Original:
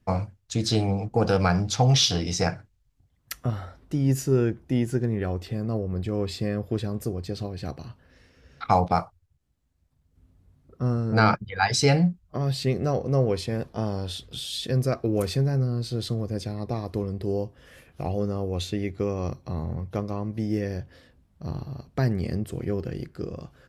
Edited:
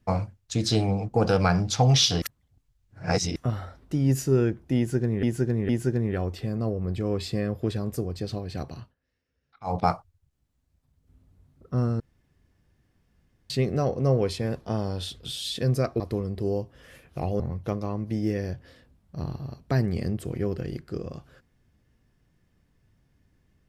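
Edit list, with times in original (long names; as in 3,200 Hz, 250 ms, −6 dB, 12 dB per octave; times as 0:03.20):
0:02.22–0:03.36: reverse
0:04.77–0:05.23: repeat, 3 plays
0:07.87–0:08.88: duck −23.5 dB, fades 0.16 s
0:11.08–0:12.58: fill with room tone
0:15.08–0:16.83: remove
0:18.23–0:19.67: remove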